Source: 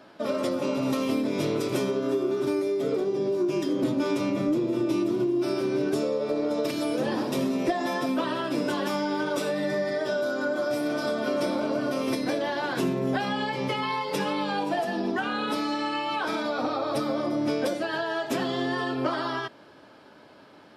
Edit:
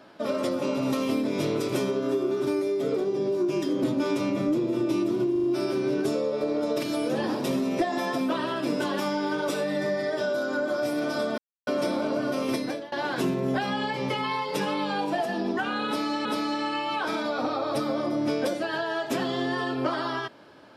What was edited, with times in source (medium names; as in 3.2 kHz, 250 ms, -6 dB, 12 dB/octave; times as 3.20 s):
5.32 s: stutter 0.04 s, 4 plays
11.26 s: insert silence 0.29 s
12.17–12.51 s: fade out, to -22 dB
15.45–15.84 s: loop, 2 plays